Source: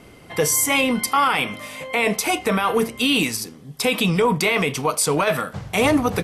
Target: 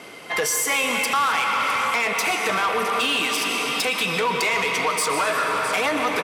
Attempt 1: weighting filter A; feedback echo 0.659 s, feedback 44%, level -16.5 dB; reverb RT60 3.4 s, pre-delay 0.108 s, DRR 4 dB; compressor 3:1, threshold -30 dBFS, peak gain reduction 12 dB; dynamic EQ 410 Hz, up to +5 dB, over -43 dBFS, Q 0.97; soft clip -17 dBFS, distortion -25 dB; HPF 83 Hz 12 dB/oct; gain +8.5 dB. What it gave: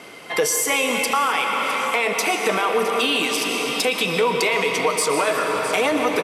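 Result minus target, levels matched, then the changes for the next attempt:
soft clip: distortion -12 dB; 500 Hz band +4.5 dB
change: dynamic EQ 1400 Hz, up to +5 dB, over -43 dBFS, Q 0.97; change: soft clip -25 dBFS, distortion -13 dB

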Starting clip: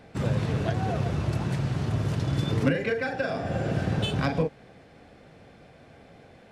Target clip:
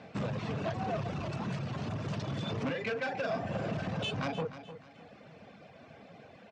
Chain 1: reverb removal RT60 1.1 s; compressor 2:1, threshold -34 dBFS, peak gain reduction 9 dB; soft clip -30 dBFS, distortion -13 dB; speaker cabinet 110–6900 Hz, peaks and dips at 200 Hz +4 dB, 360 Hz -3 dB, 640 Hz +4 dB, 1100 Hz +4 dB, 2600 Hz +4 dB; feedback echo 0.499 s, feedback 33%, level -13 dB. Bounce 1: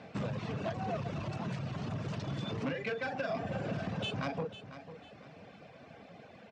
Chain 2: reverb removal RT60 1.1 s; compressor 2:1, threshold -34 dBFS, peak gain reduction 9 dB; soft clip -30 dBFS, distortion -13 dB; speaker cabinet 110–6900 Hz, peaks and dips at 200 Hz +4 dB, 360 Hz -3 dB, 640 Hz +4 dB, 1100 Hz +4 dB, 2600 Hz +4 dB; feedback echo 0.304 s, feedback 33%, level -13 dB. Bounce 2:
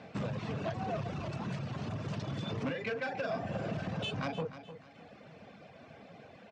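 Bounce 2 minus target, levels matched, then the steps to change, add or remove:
compressor: peak gain reduction +3 dB
change: compressor 2:1, threshold -27.5 dBFS, peak gain reduction 5.5 dB

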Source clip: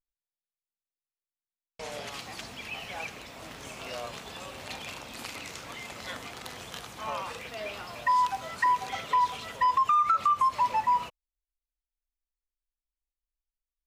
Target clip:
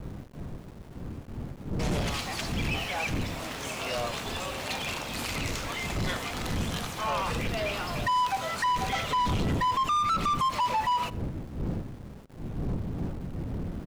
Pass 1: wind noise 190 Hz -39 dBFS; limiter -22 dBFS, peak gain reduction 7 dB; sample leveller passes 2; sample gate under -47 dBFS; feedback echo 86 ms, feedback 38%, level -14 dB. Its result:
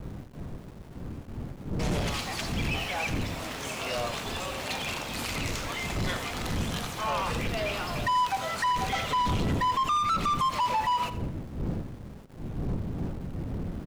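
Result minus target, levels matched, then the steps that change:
echo-to-direct +9 dB
change: feedback echo 86 ms, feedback 38%, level -23 dB

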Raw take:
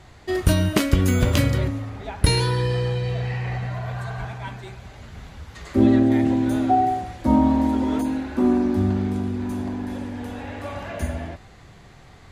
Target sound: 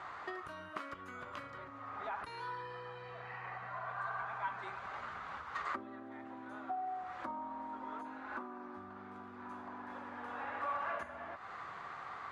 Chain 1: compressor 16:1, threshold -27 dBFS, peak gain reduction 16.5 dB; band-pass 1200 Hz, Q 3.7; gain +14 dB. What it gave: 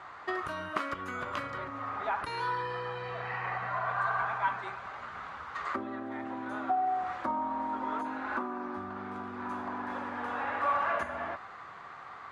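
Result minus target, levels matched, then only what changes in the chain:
compressor: peak gain reduction -10.5 dB
change: compressor 16:1, threshold -38 dBFS, peak gain reduction 27 dB

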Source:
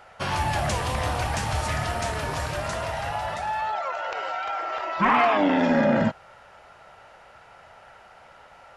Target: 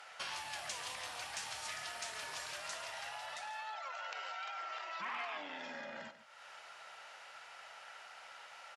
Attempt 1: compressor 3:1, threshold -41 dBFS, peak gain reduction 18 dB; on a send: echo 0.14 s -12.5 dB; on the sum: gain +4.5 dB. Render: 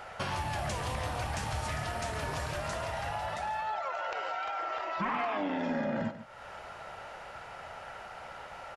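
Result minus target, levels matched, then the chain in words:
4000 Hz band -7.0 dB
compressor 3:1, threshold -41 dBFS, peak gain reduction 18 dB; band-pass 5500 Hz, Q 0.55; on a send: echo 0.14 s -12.5 dB; on the sum: gain +4.5 dB

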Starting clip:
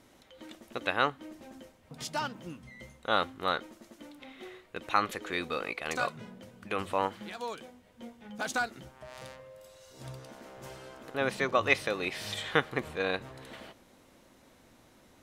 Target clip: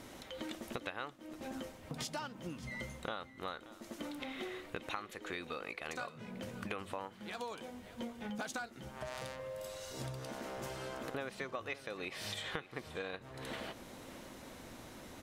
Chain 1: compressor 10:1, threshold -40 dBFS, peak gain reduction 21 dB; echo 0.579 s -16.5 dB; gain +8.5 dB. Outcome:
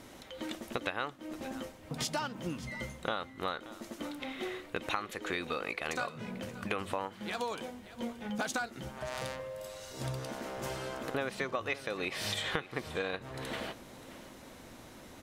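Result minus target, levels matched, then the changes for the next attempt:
compressor: peak gain reduction -6.5 dB
change: compressor 10:1, threshold -47.5 dBFS, peak gain reduction 28 dB

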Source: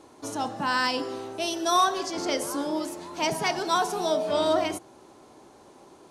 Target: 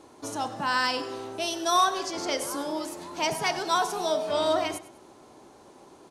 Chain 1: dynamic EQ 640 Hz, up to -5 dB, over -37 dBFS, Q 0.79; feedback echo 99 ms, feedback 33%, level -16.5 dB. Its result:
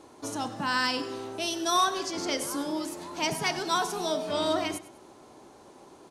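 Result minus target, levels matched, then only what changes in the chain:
250 Hz band +3.5 dB
change: dynamic EQ 230 Hz, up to -5 dB, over -37 dBFS, Q 0.79

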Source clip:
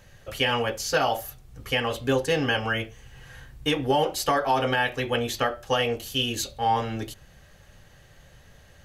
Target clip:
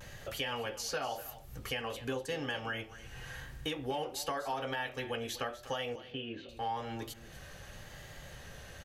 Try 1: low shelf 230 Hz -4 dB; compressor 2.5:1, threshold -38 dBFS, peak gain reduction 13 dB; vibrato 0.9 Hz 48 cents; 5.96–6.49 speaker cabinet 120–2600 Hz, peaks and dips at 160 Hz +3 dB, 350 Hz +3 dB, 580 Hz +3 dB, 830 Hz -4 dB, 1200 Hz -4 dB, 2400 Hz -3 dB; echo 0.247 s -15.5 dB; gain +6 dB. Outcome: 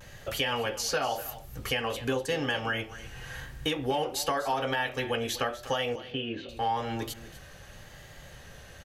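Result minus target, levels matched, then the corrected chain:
compressor: peak gain reduction -7 dB
low shelf 230 Hz -4 dB; compressor 2.5:1, threshold -50 dBFS, peak gain reduction 20 dB; vibrato 0.9 Hz 48 cents; 5.96–6.49 speaker cabinet 120–2600 Hz, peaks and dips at 160 Hz +3 dB, 350 Hz +3 dB, 580 Hz +3 dB, 830 Hz -4 dB, 1200 Hz -4 dB, 2400 Hz -3 dB; echo 0.247 s -15.5 dB; gain +6 dB

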